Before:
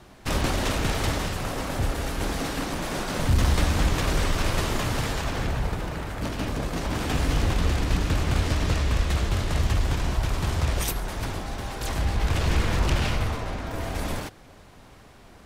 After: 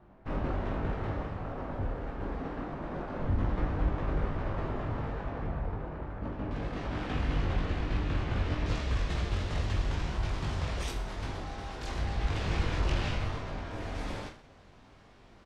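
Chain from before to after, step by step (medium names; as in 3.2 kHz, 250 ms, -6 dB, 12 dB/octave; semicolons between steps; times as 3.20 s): low-pass 1.3 kHz 12 dB/octave, from 6.51 s 3 kHz, from 8.66 s 5.4 kHz; reverse bouncing-ball echo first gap 20 ms, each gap 1.3×, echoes 5; trim -9 dB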